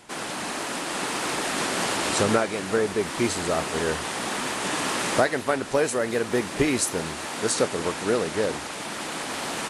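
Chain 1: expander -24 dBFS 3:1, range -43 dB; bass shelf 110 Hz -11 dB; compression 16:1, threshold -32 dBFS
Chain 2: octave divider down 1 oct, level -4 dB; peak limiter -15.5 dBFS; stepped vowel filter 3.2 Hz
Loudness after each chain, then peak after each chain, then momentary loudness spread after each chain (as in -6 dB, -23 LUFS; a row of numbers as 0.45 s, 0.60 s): -36.5 LUFS, -38.5 LUFS; -18.5 dBFS, -20.5 dBFS; 5 LU, 8 LU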